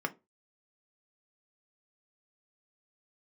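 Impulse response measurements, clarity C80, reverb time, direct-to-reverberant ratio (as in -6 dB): 29.0 dB, 0.25 s, 5.0 dB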